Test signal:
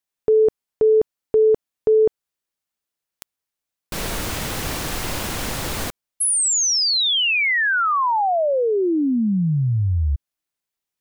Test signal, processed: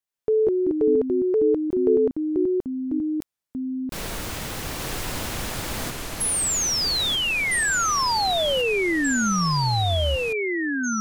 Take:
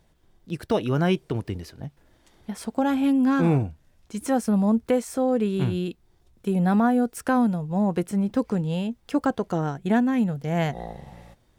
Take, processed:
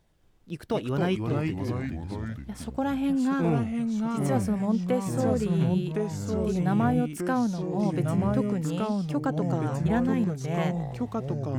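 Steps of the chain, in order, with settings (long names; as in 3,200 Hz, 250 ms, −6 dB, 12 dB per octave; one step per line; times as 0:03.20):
delay with pitch and tempo change per echo 134 ms, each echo −3 semitones, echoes 3
level −5 dB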